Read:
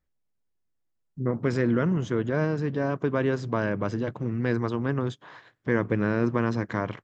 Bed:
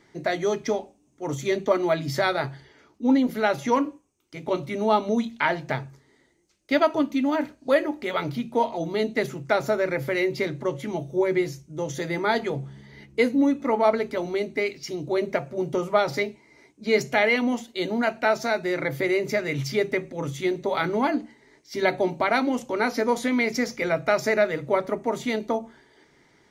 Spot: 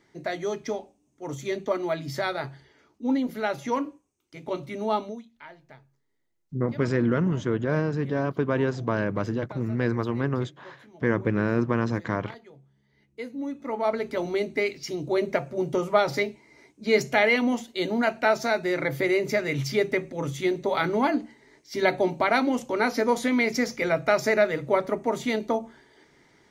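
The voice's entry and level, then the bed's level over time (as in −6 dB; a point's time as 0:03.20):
5.35 s, +0.5 dB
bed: 0:05.03 −5 dB
0:05.25 −22.5 dB
0:12.76 −22.5 dB
0:14.21 0 dB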